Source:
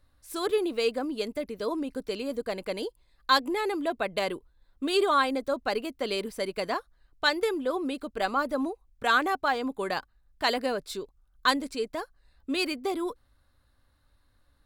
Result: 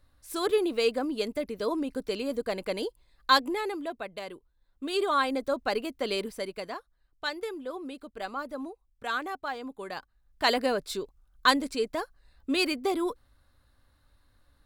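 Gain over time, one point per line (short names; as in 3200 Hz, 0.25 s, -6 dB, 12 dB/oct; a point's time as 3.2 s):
3.34 s +1 dB
4.24 s -10.5 dB
5.41 s 0 dB
6.21 s 0 dB
6.74 s -8 dB
9.9 s -8 dB
10.49 s +2 dB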